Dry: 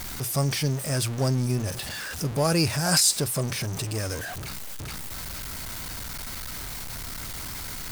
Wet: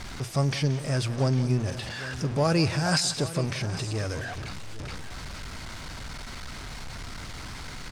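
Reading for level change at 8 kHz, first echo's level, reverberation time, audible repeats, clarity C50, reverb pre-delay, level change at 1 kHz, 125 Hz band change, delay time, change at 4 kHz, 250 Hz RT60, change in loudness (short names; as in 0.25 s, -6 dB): -9.0 dB, -15.5 dB, none, 2, none, none, 0.0 dB, +0.5 dB, 0.177 s, -3.5 dB, none, -1.5 dB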